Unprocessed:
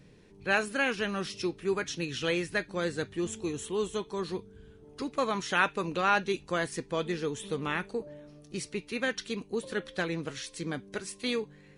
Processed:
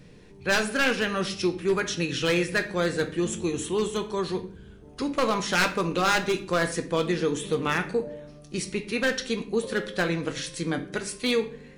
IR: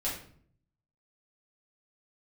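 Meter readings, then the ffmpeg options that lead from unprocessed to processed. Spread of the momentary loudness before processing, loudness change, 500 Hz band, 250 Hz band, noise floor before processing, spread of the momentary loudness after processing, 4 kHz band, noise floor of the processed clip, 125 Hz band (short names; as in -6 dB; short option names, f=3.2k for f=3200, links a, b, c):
11 LU, +5.5 dB, +6.0 dB, +6.0 dB, -56 dBFS, 8 LU, +6.5 dB, -49 dBFS, +6.5 dB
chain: -filter_complex "[0:a]aeval=exprs='0.0891*(abs(mod(val(0)/0.0891+3,4)-2)-1)':c=same,asplit=2[a][b];[1:a]atrim=start_sample=2205[c];[b][c]afir=irnorm=-1:irlink=0,volume=-10dB[d];[a][d]amix=inputs=2:normalize=0,volume=4dB"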